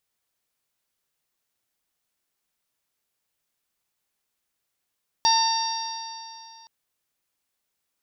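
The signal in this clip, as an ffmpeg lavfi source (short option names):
-f lavfi -i "aevalsrc='0.126*pow(10,-3*t/2.68)*sin(2*PI*902.04*t)+0.0237*pow(10,-3*t/2.68)*sin(2*PI*1810.27*t)+0.0168*pow(10,-3*t/2.68)*sin(2*PI*2730.83*t)+0.0398*pow(10,-3*t/2.68)*sin(2*PI*3669.71*t)+0.0944*pow(10,-3*t/2.68)*sin(2*PI*4632.71*t)+0.075*pow(10,-3*t/2.68)*sin(2*PI*5625.36*t)':d=1.42:s=44100"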